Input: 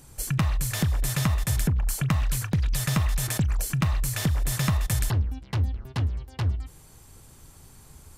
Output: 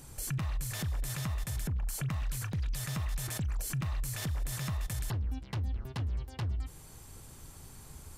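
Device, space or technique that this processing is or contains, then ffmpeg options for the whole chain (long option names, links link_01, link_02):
stacked limiters: -af "alimiter=limit=-19dB:level=0:latency=1:release=406,alimiter=limit=-24dB:level=0:latency=1:release=120,alimiter=level_in=4dB:limit=-24dB:level=0:latency=1:release=17,volume=-4dB"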